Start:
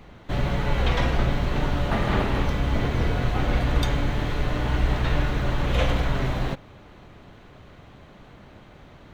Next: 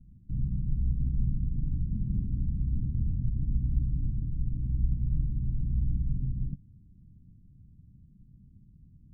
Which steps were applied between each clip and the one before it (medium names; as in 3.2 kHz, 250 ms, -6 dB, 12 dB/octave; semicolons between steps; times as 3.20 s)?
inverse Chebyshev low-pass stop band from 530 Hz, stop band 50 dB; trim -4.5 dB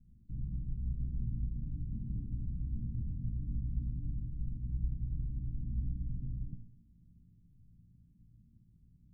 feedback comb 57 Hz, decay 0.68 s, harmonics all, mix 80%; on a send at -11.5 dB: reverberation RT60 0.55 s, pre-delay 63 ms; on the sum: trim +1 dB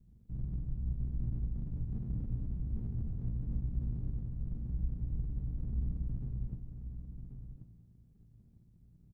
comb filter that takes the minimum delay 0.53 ms; on a send: delay 1084 ms -9 dB; on the sum: trim +1 dB